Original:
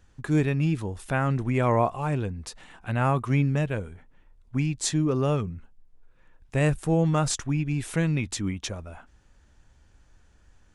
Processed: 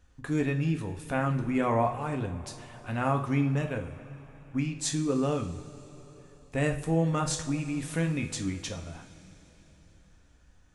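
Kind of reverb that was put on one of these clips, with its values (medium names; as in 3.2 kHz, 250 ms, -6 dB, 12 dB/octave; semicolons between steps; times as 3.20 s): two-slope reverb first 0.41 s, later 4.2 s, from -18 dB, DRR 3.5 dB; trim -4.5 dB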